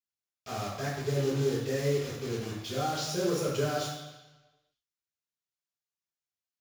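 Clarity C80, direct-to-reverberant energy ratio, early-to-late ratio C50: 4.0 dB, -7.0 dB, 1.5 dB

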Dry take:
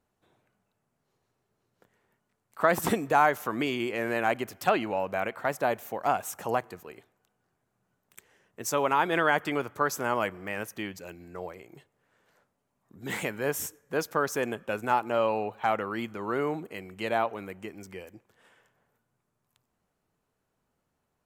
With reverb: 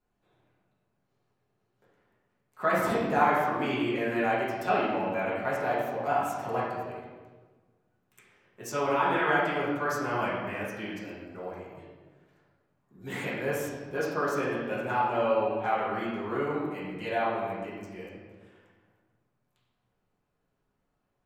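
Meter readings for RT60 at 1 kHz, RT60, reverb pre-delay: 1.3 s, 1.4 s, 5 ms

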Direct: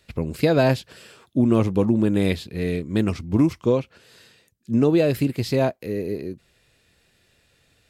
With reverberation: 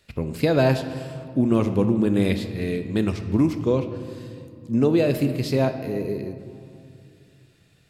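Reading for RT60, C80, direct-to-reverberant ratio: 2.6 s, 10.5 dB, 8.0 dB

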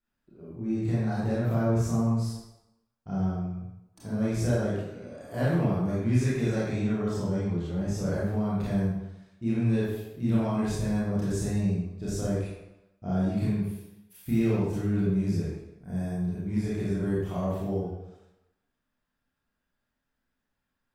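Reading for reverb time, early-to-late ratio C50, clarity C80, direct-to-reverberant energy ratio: 0.95 s, -1.5 dB, 1.5 dB, -9.0 dB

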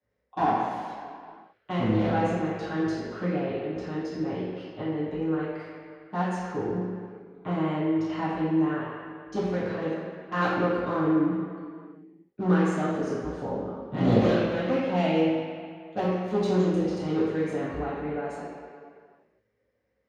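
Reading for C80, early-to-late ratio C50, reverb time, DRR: 1.0 dB, -1.0 dB, no single decay rate, -12.5 dB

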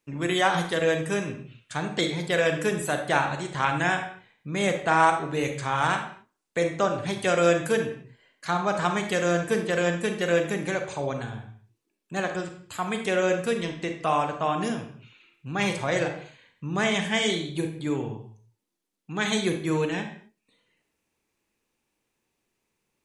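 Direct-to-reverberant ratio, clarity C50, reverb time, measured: 5.0 dB, 7.5 dB, no single decay rate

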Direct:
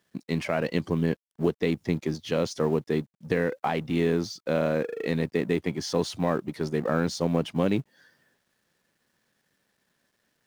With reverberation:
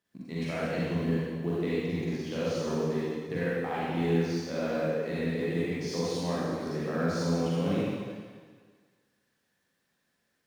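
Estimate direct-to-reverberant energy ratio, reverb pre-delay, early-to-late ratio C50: -9.0 dB, 38 ms, -6.0 dB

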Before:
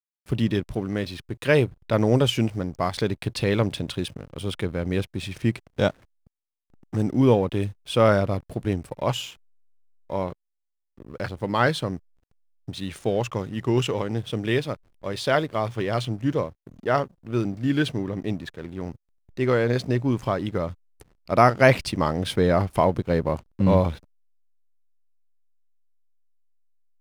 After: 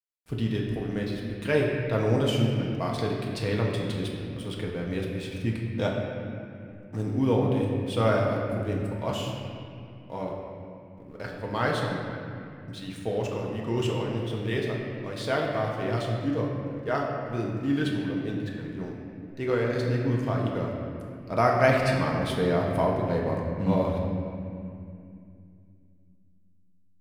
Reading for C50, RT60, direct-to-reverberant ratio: 1.0 dB, 2.5 s, -2.0 dB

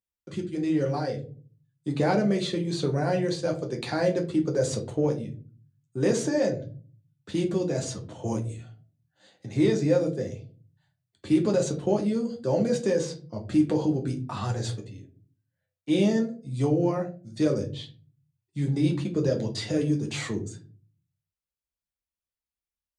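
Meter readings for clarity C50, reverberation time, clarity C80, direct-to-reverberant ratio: 12.5 dB, 0.40 s, 18.5 dB, 1.0 dB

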